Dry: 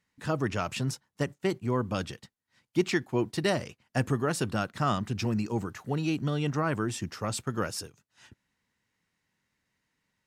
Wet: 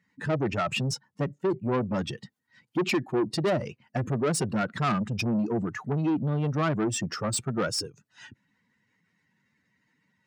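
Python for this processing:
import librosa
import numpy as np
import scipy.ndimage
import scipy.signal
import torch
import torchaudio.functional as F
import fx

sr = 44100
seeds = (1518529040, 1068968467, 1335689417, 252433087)

y = fx.spec_expand(x, sr, power=1.8)
y = 10.0 ** (-29.5 / 20.0) * np.tanh(y / 10.0 ** (-29.5 / 20.0))
y = scipy.signal.sosfilt(scipy.signal.butter(2, 140.0, 'highpass', fs=sr, output='sos'), y)
y = F.gain(torch.from_numpy(y), 8.5).numpy()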